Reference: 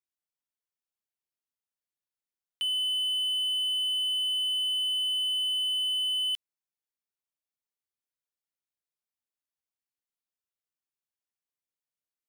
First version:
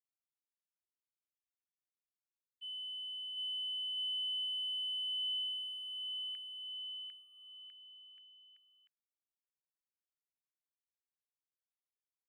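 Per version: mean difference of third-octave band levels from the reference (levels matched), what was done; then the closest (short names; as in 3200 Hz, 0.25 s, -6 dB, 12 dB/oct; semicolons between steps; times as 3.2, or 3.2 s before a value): 2.5 dB: expander -23 dBFS; graphic EQ 2000/4000/8000 Hz +8/-11/-9 dB; band-pass sweep 3900 Hz -> 1600 Hz, 5.05–6.1; on a send: bouncing-ball echo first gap 0.75 s, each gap 0.8×, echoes 5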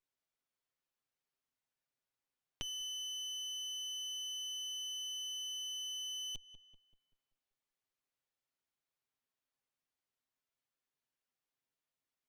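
5.0 dB: minimum comb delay 7.5 ms; high shelf 6000 Hz -11 dB; on a send: darkening echo 0.193 s, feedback 43%, low-pass 2500 Hz, level -21 dB; on the sum: compressor 6:1, threshold -47 dBFS, peak gain reduction 13 dB; gain +5.5 dB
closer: first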